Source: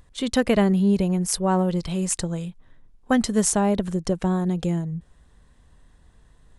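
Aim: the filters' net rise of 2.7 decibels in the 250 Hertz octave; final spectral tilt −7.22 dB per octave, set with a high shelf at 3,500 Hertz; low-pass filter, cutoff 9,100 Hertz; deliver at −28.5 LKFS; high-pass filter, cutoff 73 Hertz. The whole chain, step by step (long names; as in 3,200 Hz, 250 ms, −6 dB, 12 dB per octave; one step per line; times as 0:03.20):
high-pass filter 73 Hz
low-pass filter 9,100 Hz
parametric band 250 Hz +4 dB
high-shelf EQ 3,500 Hz −8 dB
level −7 dB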